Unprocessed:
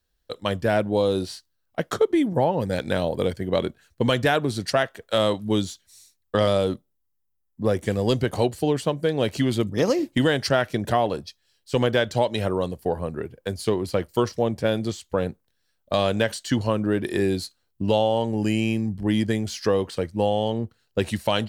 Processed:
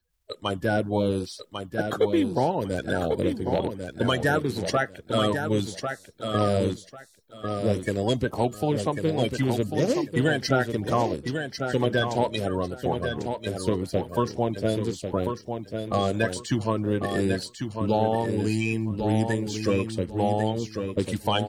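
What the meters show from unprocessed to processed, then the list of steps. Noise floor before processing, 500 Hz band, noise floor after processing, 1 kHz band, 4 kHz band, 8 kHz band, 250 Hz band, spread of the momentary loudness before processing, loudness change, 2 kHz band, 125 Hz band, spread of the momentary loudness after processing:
−73 dBFS, −3.0 dB, −52 dBFS, −0.5 dB, −3.0 dB, −1.0 dB, −1.5 dB, 8 LU, −2.0 dB, −1.0 dB, −0.5 dB, 7 LU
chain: spectral magnitudes quantised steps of 30 dB
repeating echo 1,096 ms, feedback 20%, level −6.5 dB
level −2 dB

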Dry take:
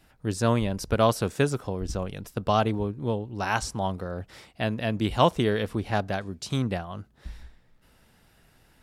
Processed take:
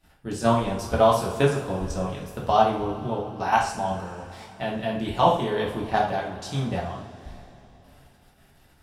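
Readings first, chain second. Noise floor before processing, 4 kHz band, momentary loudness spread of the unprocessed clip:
−61 dBFS, −0.5 dB, 13 LU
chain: dynamic equaliser 820 Hz, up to +7 dB, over −38 dBFS, Q 1.6
output level in coarse steps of 10 dB
coupled-rooms reverb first 0.48 s, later 3.6 s, from −18 dB, DRR −4 dB
level −1.5 dB

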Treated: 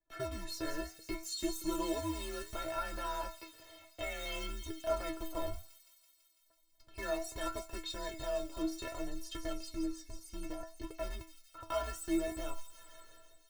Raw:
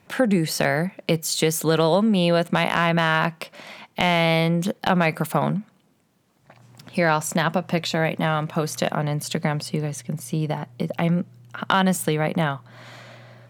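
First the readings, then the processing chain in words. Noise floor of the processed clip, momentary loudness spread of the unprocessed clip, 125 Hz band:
−70 dBFS, 10 LU, −27.0 dB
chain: high-pass filter 51 Hz 12 dB per octave
noise gate −45 dBFS, range −14 dB
graphic EQ with 15 bands 250 Hz +6 dB, 630 Hz +4 dB, 2,500 Hz −5 dB, 10,000 Hz −6 dB
in parallel at −10 dB: wrap-around overflow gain 14 dB
on the sum: frequency shifter −130 Hz
stiff-string resonator 320 Hz, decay 0.29 s, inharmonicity 0.008
on a send: delay with a high-pass on its return 166 ms, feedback 72%, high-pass 5,000 Hz, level −5 dB
on the sum: flanger 0.64 Hz, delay 2.1 ms, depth 9.1 ms, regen +78%
level +1.5 dB

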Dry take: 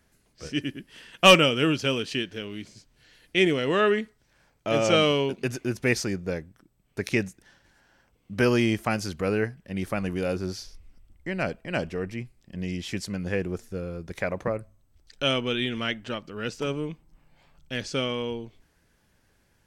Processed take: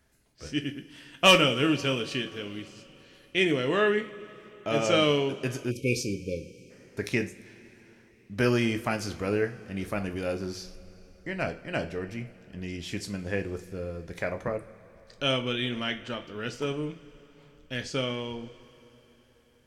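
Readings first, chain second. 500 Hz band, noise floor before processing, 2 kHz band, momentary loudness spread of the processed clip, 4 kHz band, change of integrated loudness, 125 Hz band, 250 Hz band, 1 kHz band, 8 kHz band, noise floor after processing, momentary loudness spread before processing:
−2.5 dB, −67 dBFS, −2.0 dB, 18 LU, −2.0 dB, −2.5 dB, −2.0 dB, −2.5 dB, −3.0 dB, −2.0 dB, −60 dBFS, 15 LU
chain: coupled-rooms reverb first 0.3 s, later 4 s, from −21 dB, DRR 6 dB
time-frequency box erased 0:05.71–0:06.70, 580–2,200 Hz
level −3 dB

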